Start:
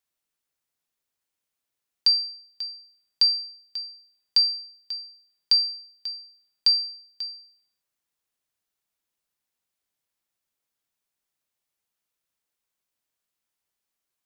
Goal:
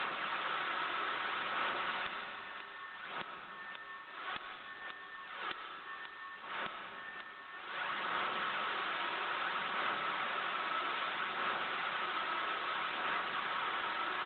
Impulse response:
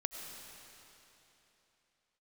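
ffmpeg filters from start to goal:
-filter_complex "[0:a]aeval=exprs='val(0)+0.5*0.0178*sgn(val(0))':channel_layout=same,highpass=260,equalizer=frequency=1300:width_type=o:width=0.92:gain=12,aecho=1:1:5.4:0.36,acrossover=split=330[link_01][link_02];[link_02]acompressor=threshold=-37dB:ratio=12[link_03];[link_01][link_03]amix=inputs=2:normalize=0,aphaser=in_gain=1:out_gain=1:delay=3.1:decay=0.39:speed=0.61:type=sinusoidal,aresample=8000,aeval=exprs='0.0631*sin(PI/2*1.78*val(0)/0.0631)':channel_layout=same,aresample=44100[link_04];[1:a]atrim=start_sample=2205[link_05];[link_04][link_05]afir=irnorm=-1:irlink=0,volume=-1.5dB" -ar 48000 -c:a libopus -b:a 20k

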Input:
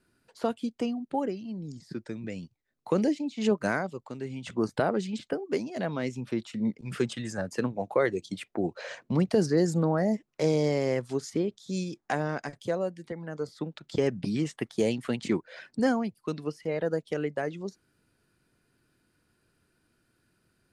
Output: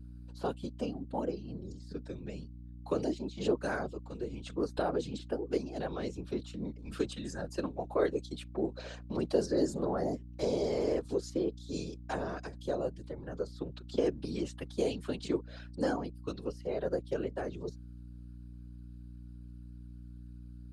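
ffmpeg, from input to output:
ffmpeg -i in.wav -filter_complex "[0:a]equalizer=frequency=400:width_type=o:width=0.33:gain=6,equalizer=frequency=2000:width_type=o:width=0.33:gain=-10,equalizer=frequency=4000:width_type=o:width=0.33:gain=5,afftfilt=real='hypot(re,im)*cos(2*PI*random(0))':imag='hypot(re,im)*sin(2*PI*random(1))':win_size=512:overlap=0.75,acrossover=split=240[link_01][link_02];[link_01]acompressor=threshold=-42dB:ratio=10[link_03];[link_03][link_02]amix=inputs=2:normalize=0,aeval=exprs='val(0)+0.00501*(sin(2*PI*60*n/s)+sin(2*PI*2*60*n/s)/2+sin(2*PI*3*60*n/s)/3+sin(2*PI*4*60*n/s)/4+sin(2*PI*5*60*n/s)/5)':channel_layout=same" out.wav

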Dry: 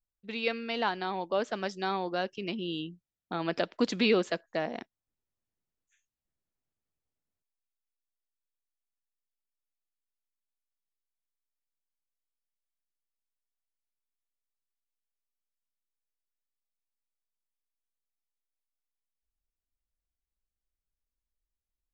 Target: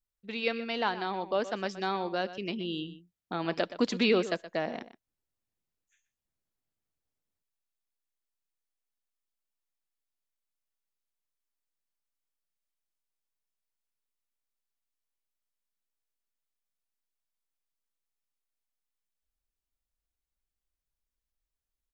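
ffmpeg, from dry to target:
ffmpeg -i in.wav -filter_complex "[0:a]asplit=2[link_01][link_02];[link_02]adelay=122.4,volume=-14dB,highshelf=frequency=4000:gain=-2.76[link_03];[link_01][link_03]amix=inputs=2:normalize=0" out.wav

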